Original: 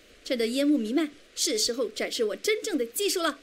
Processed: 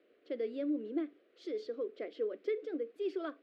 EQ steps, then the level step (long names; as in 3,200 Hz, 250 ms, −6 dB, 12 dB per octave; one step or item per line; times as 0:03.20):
resonant band-pass 370 Hz, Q 1.9
high-frequency loss of the air 350 metres
spectral tilt +4.5 dB per octave
0.0 dB